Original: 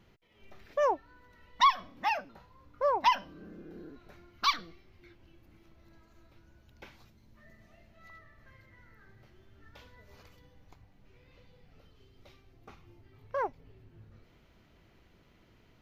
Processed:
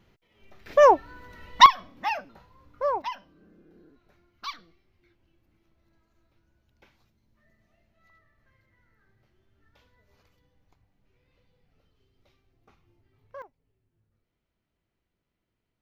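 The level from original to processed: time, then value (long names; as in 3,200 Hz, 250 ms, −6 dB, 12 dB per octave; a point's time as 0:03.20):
0 dB
from 0:00.66 +12 dB
from 0:01.66 +1.5 dB
from 0:03.02 −9 dB
from 0:13.42 −19.5 dB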